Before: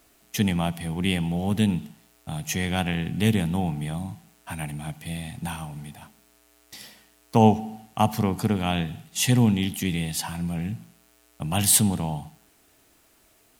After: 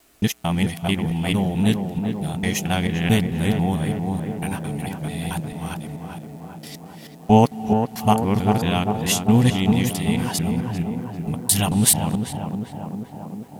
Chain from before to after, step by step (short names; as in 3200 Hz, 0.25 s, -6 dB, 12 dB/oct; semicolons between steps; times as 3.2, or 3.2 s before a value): local time reversal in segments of 0.221 s; tape echo 0.396 s, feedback 86%, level -4.5 dB, low-pass 1300 Hz; gain +3 dB